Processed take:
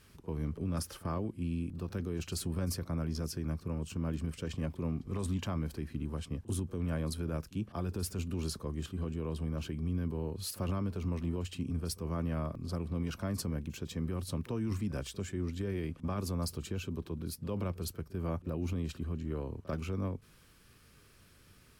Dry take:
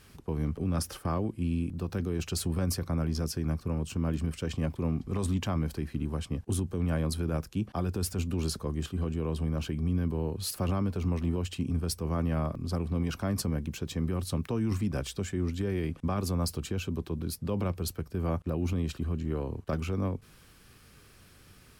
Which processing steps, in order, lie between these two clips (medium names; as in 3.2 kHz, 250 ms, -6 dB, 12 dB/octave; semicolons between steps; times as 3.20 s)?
band-stop 770 Hz, Q 12; pre-echo 42 ms -19 dB; trim -5 dB